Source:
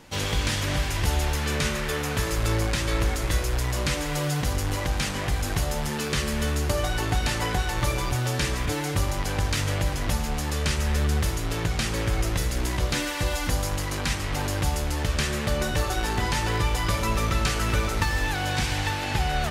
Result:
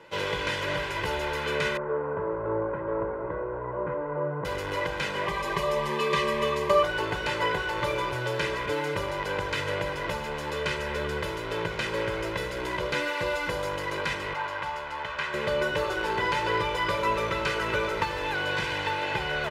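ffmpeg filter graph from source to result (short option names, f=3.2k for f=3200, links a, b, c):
-filter_complex "[0:a]asettb=1/sr,asplit=3[a][b][c];[a]atrim=end=1.774[d];[b]atrim=start=1.77:end=4.45,asetpts=PTS-STARTPTS,afade=t=in:d=0.004:c=qsin,afade=t=out:st=2.676:d=0.004:c=qsin,lowpass=f=1.2k:w=0.5412,lowpass=f=1.2k:w=1.3066,lowshelf=f=64:g=-9[e];[c]atrim=start=4.446[f];[d][e]acrossfade=d=0.004:c1=hsin:c2=qsin[g];[g][f]acrossfade=d=0.004:c1=qsin:c2=hsin,asettb=1/sr,asplit=3[h][i][j];[h]atrim=end=5.264[k];[i]atrim=start=5.26:end=6.83,asetpts=PTS-STARTPTS,afade=t=in:d=0.004:c=qsin,afade=t=out:st=1.566:d=0.004:c=qsin,asuperstop=centerf=1400:order=4:qfactor=3.7,equalizer=f=1.2k:t=o:w=0.26:g=14.5,aecho=1:1:5.1:0.59,atrim=end_sample=69237[l];[j]atrim=start=6.826[m];[k][l]acrossfade=d=0.004:c1=hsin:c2=qsin[n];[n][m]acrossfade=d=0.004:c1=qsin:c2=hsin,asettb=1/sr,asplit=3[o][p][q];[o]atrim=end=14.334[r];[p]atrim=start=14.33:end=15.34,asetpts=PTS-STARTPTS,afade=t=in:d=0.004:c=qsin,afade=t=out:st=1.006:d=0.004:c=qsin,lowpass=f=2.6k:p=1,lowshelf=f=620:t=q:w=1.5:g=-10[s];[q]atrim=start=15.336[t];[r][s]acrossfade=d=0.004:c1=hsin:c2=qsin[u];[u][t]acrossfade=d=0.004:c1=qsin:c2=hsin,acrossover=split=170 3400:gain=0.0708 1 0.141[v][w][x];[v][w][x]amix=inputs=3:normalize=0,aecho=1:1:2:0.75"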